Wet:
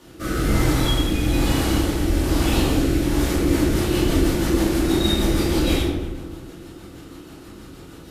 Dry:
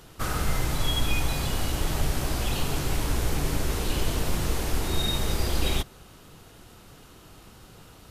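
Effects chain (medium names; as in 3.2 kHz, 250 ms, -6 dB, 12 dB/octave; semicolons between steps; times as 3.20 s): peaking EQ 330 Hz +10 dB 0.53 oct; hum notches 50/100/150 Hz; on a send: filtered feedback delay 120 ms, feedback 67%, low-pass 2.4 kHz, level -11 dB; on the sum: rotary cabinet horn 1.1 Hz, later 6.3 Hz, at 3.00 s; saturation -14 dBFS, distortion -24 dB; high-pass 44 Hz; simulated room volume 240 m³, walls mixed, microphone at 2.5 m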